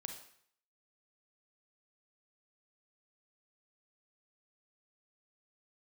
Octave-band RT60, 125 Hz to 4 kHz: 0.60 s, 0.55 s, 0.60 s, 0.65 s, 0.65 s, 0.60 s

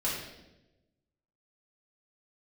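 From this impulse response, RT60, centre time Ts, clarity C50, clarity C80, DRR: 1.0 s, 57 ms, 1.5 dB, 4.5 dB, -7.5 dB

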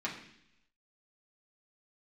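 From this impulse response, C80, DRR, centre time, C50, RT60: 10.0 dB, -5.5 dB, 26 ms, 7.5 dB, 0.70 s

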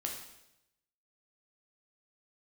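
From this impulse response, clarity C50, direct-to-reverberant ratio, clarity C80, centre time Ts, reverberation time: 4.5 dB, 0.0 dB, 7.5 dB, 36 ms, 0.85 s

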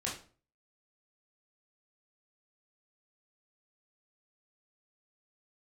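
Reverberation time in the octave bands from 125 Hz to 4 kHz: 0.50 s, 0.45 s, 0.45 s, 0.40 s, 0.35 s, 0.30 s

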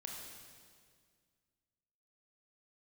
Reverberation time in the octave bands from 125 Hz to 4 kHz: 2.4 s, 2.3 s, 2.1 s, 1.8 s, 1.8 s, 1.8 s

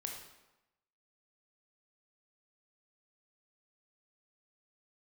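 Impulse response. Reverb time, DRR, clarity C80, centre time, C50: 1.0 s, 1.0 dB, 7.0 dB, 38 ms, 4.0 dB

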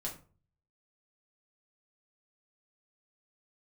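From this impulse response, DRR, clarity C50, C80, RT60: -3.0 dB, 9.5 dB, 15.0 dB, 0.40 s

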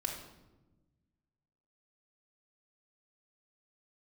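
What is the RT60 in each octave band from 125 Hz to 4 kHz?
2.0 s, 1.8 s, 1.3 s, 0.95 s, 0.75 s, 0.70 s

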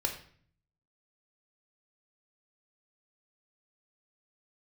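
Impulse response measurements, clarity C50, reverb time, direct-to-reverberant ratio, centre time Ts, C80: 8.5 dB, 0.50 s, 2.5 dB, 18 ms, 12.5 dB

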